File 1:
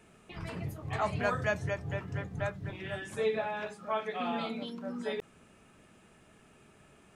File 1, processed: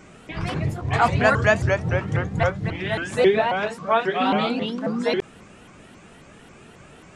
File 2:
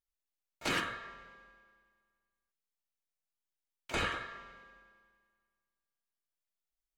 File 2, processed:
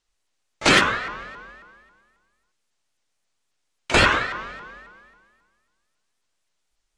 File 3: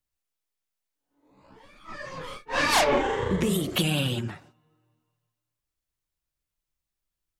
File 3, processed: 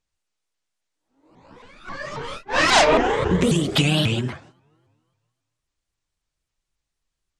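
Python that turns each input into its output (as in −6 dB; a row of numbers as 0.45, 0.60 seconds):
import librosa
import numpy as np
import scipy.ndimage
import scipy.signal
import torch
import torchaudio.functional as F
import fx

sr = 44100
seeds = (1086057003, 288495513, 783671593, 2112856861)

y = scipy.signal.sosfilt(scipy.signal.butter(4, 8800.0, 'lowpass', fs=sr, output='sos'), x)
y = fx.vibrato_shape(y, sr, shape='saw_up', rate_hz=3.7, depth_cents=250.0)
y = librosa.util.normalize(y) * 10.0 ** (-3 / 20.0)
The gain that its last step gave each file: +13.0, +17.5, +6.0 decibels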